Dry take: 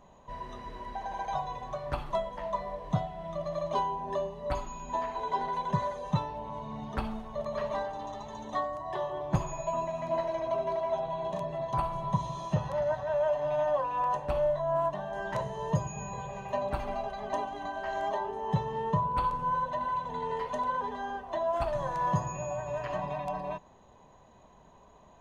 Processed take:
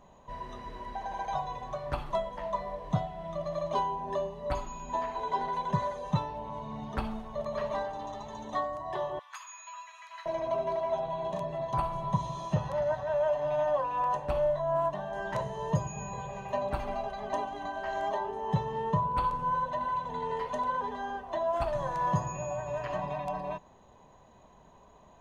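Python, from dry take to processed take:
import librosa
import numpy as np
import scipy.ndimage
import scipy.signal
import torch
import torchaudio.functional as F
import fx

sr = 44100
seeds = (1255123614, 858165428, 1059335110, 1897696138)

y = fx.steep_highpass(x, sr, hz=1200.0, slope=36, at=(9.19, 10.26))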